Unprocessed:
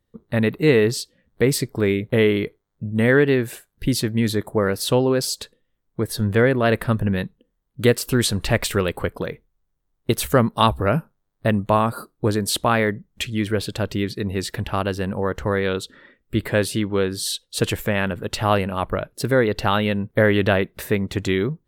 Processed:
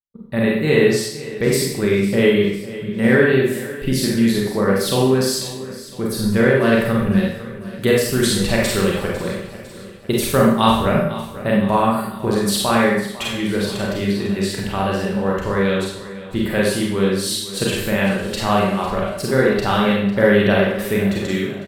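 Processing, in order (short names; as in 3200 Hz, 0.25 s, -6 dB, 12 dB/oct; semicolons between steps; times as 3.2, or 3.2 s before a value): ending faded out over 0.50 s; comb 5.2 ms, depth 31%; on a send: feedback echo 0.502 s, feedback 53%, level -16 dB; on the sum: expander -42 dBFS; Schroeder reverb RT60 0.68 s, combs from 31 ms, DRR -3.5 dB; gain -2.5 dB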